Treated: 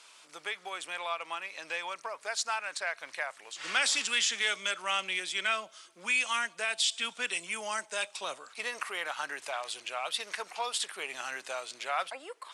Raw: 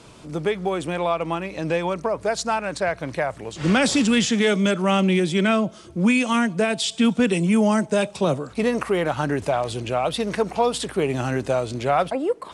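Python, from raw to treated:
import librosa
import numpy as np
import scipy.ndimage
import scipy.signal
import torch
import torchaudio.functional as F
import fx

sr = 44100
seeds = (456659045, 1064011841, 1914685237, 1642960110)

y = scipy.signal.sosfilt(scipy.signal.butter(2, 1400.0, 'highpass', fs=sr, output='sos'), x)
y = y * 10.0 ** (-3.0 / 20.0)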